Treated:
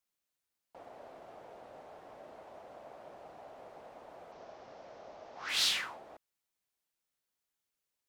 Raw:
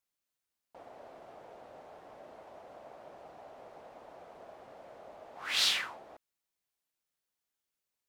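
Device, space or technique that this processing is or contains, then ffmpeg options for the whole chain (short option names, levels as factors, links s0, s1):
one-band saturation: -filter_complex "[0:a]acrossover=split=310|4000[s0][s1][s2];[s1]asoftclip=type=tanh:threshold=0.0299[s3];[s0][s3][s2]amix=inputs=3:normalize=0,asettb=1/sr,asplit=3[s4][s5][s6];[s4]atrim=end=4.324[s7];[s5]atrim=start=4.32:end=5.49,asetpts=PTS-STARTPTS,afade=t=in:d=0.004:c=qsin,afade=t=out:st=1.166:d=0.004:c=qsin,highshelf=f=7700:t=q:w=3:g=-12[s8];[s6]atrim=start=5.486[s9];[s7][s8]acrossfade=d=0.004:c1=hsin:c2=qsin[s10];[s10][s9]acrossfade=d=0.004:c1=qsin:c2=hsin"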